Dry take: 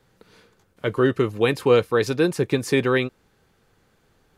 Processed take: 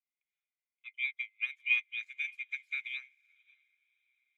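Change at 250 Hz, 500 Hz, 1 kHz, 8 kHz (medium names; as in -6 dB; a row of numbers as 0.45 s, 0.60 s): under -40 dB, under -40 dB, under -35 dB, under -30 dB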